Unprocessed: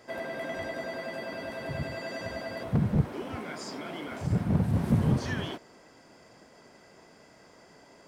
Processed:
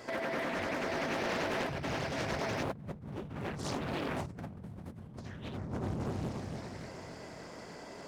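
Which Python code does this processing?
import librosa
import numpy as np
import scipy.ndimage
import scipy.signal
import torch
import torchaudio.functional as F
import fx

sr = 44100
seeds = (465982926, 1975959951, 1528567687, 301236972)

y = fx.echo_bbd(x, sr, ms=286, stages=2048, feedback_pct=56, wet_db=-5.0)
y = fx.over_compress(y, sr, threshold_db=-39.0, ratio=-1.0)
y = fx.doppler_dist(y, sr, depth_ms=0.96)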